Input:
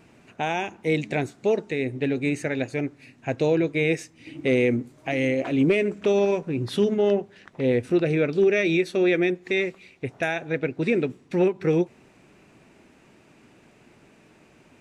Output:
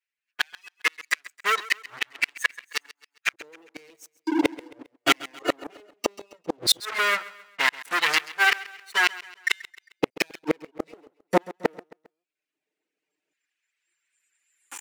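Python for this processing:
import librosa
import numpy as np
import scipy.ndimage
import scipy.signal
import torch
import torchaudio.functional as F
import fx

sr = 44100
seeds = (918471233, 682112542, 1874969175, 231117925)

p1 = fx.lower_of_two(x, sr, delay_ms=6.6)
p2 = fx.recorder_agc(p1, sr, target_db=-14.5, rise_db_per_s=5.9, max_gain_db=30)
p3 = fx.noise_reduce_blind(p2, sr, reduce_db=24)
p4 = fx.highpass(p3, sr, hz=49.0, slope=6)
p5 = fx.dereverb_blind(p4, sr, rt60_s=0.75)
p6 = fx.band_shelf(p5, sr, hz=820.0, db=-9.0, octaves=1.7)
p7 = fx.leveller(p6, sr, passes=5)
p8 = fx.filter_lfo_highpass(p7, sr, shape='square', hz=0.15, low_hz=470.0, high_hz=1600.0, q=1.5)
p9 = fx.gate_flip(p8, sr, shuts_db=-10.0, range_db=-41)
p10 = p9 + fx.echo_feedback(p9, sr, ms=134, feedback_pct=43, wet_db=-18.5, dry=0)
y = F.gain(torch.from_numpy(p10), 3.5).numpy()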